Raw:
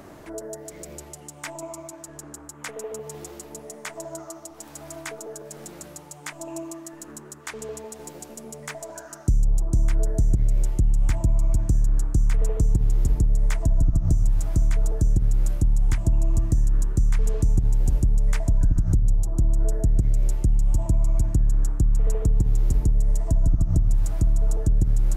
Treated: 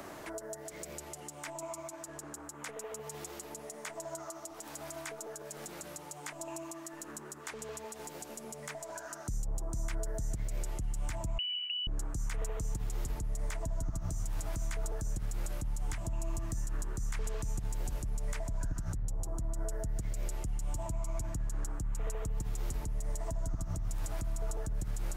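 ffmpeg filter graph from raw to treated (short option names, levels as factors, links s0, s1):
-filter_complex "[0:a]asettb=1/sr,asplit=3[s0][s1][s2];[s0]atrim=end=11.384[s3];[s1]atrim=start=11.38:end=11.87,asetpts=PTS-STARTPTS,afade=t=in:d=0.004:c=qsin,afade=t=out:st=0.486:d=0.004:c=qsin,agate=range=0.0224:threshold=0.126:ratio=3:release=100:detection=peak,acompressor=threshold=0.0631:ratio=6:attack=3.2:release=140:knee=1:detection=peak,lowpass=f=2600:t=q:w=0.5098,lowpass=f=2600:t=q:w=0.6013,lowpass=f=2600:t=q:w=0.9,lowpass=f=2600:t=q:w=2.563,afreqshift=-3000[s4];[s2]atrim=start=11.866[s5];[s3][s4]acrossfade=d=0.004:c1=hsin:c2=qsin[s6];[s6][s5]acrossfade=d=0.004:c1=qsin:c2=hsin,lowshelf=f=270:g=-11,acrossover=split=200|740[s7][s8][s9];[s7]acompressor=threshold=0.02:ratio=4[s10];[s8]acompressor=threshold=0.00282:ratio=4[s11];[s9]acompressor=threshold=0.01:ratio=4[s12];[s10][s11][s12]amix=inputs=3:normalize=0,alimiter=level_in=1.78:limit=0.0631:level=0:latency=1:release=57,volume=0.562,volume=1.33"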